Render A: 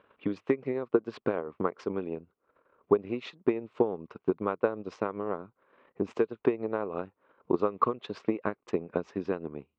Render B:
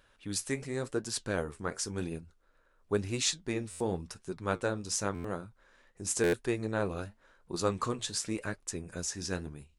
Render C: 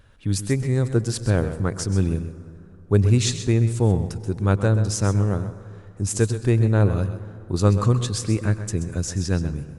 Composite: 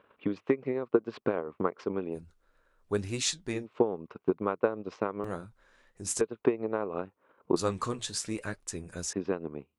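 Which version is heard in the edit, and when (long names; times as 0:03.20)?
A
0:02.16–0:03.62: punch in from B, crossfade 0.10 s
0:05.24–0:06.21: punch in from B
0:07.56–0:09.13: punch in from B
not used: C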